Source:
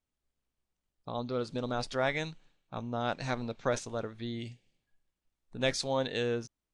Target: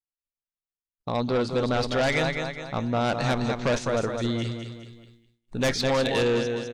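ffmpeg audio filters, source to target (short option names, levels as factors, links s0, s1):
-filter_complex "[0:a]aecho=1:1:206|412|618|824|1030:0.398|0.171|0.0736|0.0317|0.0136,acrossover=split=4800[s0][s1];[s1]acompressor=threshold=0.00224:ratio=4:attack=1:release=60[s2];[s0][s2]amix=inputs=2:normalize=0,asplit=2[s3][s4];[s4]aeval=exprs='0.168*sin(PI/2*3.98*val(0)/0.168)':c=same,volume=0.422[s5];[s3][s5]amix=inputs=2:normalize=0,agate=range=0.0224:threshold=0.00316:ratio=3:detection=peak"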